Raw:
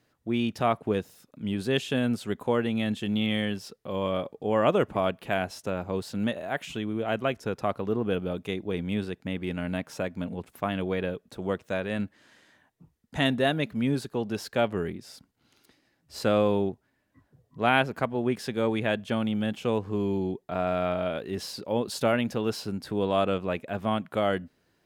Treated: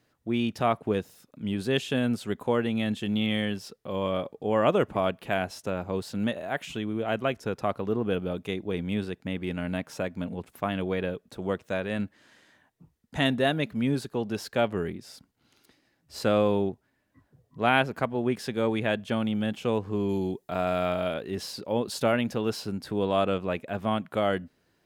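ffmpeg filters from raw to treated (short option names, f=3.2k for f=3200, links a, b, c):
-filter_complex "[0:a]asettb=1/sr,asplit=3[a][b][c];[a]atrim=end=20.094[d];[b]atrim=start=20.09:end=21.14,asetpts=PTS-STARTPTS,afade=t=in:d=0.004:c=qsin,afade=t=out:st=1.046:d=0.004:c=qsin,highshelf=f=4.7k:g=11.5[e];[c]atrim=start=21.136[f];[d][e]acrossfade=d=0.004:c1=hsin:c2=qsin[g];[g][f]acrossfade=d=0.004:c1=qsin:c2=hsin"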